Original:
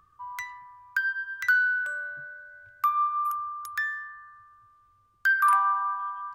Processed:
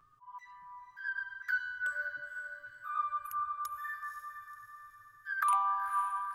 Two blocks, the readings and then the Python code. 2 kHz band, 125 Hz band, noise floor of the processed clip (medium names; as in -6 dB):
-10.5 dB, no reading, -60 dBFS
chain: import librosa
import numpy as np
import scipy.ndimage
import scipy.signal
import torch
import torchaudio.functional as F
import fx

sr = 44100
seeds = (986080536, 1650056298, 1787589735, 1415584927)

y = fx.auto_swell(x, sr, attack_ms=256.0)
y = fx.env_flanger(y, sr, rest_ms=7.7, full_db=-24.0)
y = fx.echo_diffused(y, sr, ms=507, feedback_pct=49, wet_db=-9)